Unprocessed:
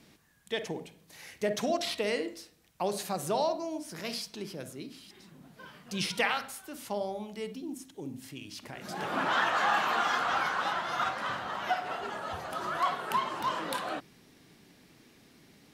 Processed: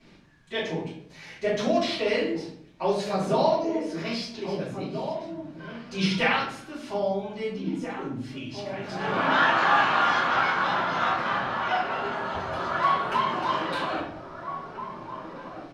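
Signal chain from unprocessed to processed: LPF 4500 Hz 12 dB/oct; outdoor echo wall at 280 m, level -8 dB; shoebox room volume 63 m³, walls mixed, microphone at 2.9 m; gain -6 dB

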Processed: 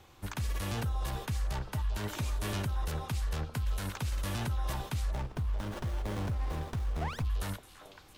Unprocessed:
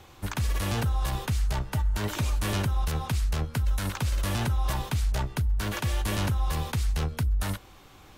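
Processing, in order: delay with a stepping band-pass 0.395 s, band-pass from 520 Hz, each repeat 1.4 oct, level -5 dB; 7.01–7.22 painted sound rise 630–2600 Hz -28 dBFS; 5.13–7.25 running maximum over 17 samples; gain -6.5 dB

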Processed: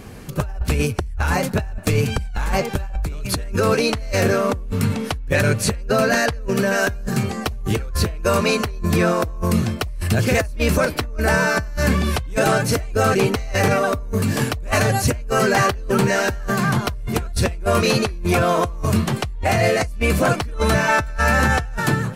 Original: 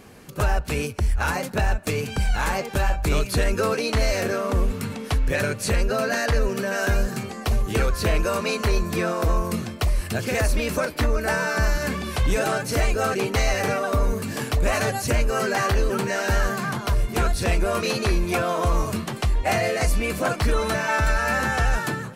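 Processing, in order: low shelf 130 Hz +11.5 dB; negative-ratio compressor -21 dBFS, ratio -1

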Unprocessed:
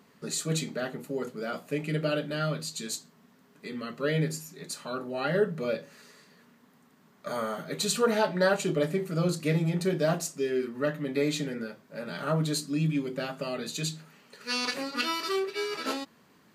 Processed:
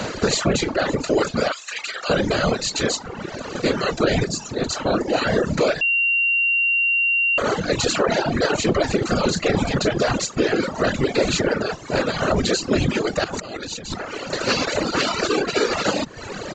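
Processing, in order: per-bin compression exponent 0.4; 4.26–5.08 bell 1900 Hz -5 dB 2.2 oct; limiter -14 dBFS, peak gain reduction 6.5 dB; 1.52–2.1 HPF 1300 Hz 12 dB/oct; reverb removal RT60 0.5 s; whisperiser; reverb removal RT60 1.2 s; 13.24–13.94 negative-ratio compressor -38 dBFS, ratio -1; downsampling 16000 Hz; 5.81–7.38 bleep 2760 Hz -22.5 dBFS; gain +6.5 dB

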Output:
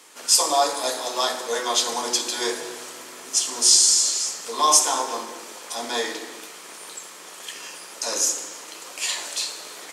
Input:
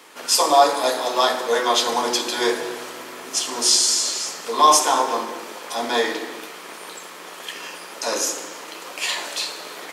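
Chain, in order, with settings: bell 7700 Hz +10.5 dB 1.5 oct; gain -6.5 dB

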